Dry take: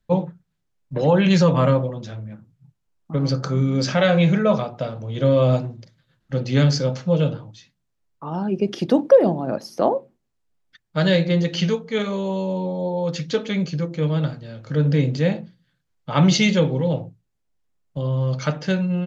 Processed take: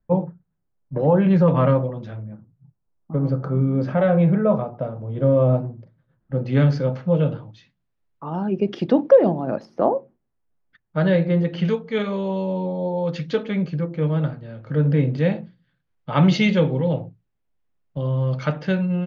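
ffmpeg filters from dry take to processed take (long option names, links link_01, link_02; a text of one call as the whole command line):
ffmpeg -i in.wav -af "asetnsamples=nb_out_samples=441:pad=0,asendcmd='1.48 lowpass f 2200;2.23 lowpass f 1100;6.45 lowpass f 2000;7.32 lowpass f 3100;9.65 lowpass f 1700;11.65 lowpass f 3100;13.43 lowpass f 2100;15.18 lowpass f 3000',lowpass=1200" out.wav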